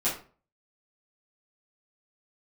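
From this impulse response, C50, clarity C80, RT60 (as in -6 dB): 6.5 dB, 12.5 dB, 0.40 s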